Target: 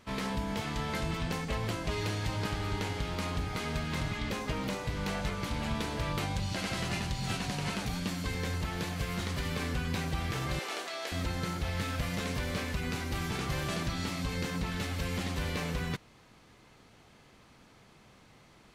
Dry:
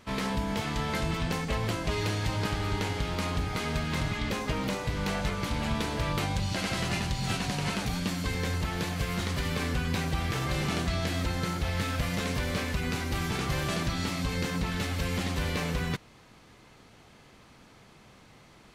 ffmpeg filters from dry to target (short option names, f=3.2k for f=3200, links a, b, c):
-filter_complex "[0:a]asettb=1/sr,asplit=3[a][b][c];[a]atrim=end=10.594[d];[b]atrim=start=10.59:end=11.12,asetpts=PTS-STARTPTS,afade=t=in:d=0.004:c=qsin,afade=t=out:st=0.526:d=0.004:c=qsin,highpass=f=400:w=0.5412,highpass=f=400:w=1.3066[e];[c]atrim=start=11.116[f];[d][e]acrossfade=d=0.004:c1=hsin:c2=qsin[g];[g][f]acrossfade=d=0.004:c1=qsin:c2=hsin,volume=-3.5dB"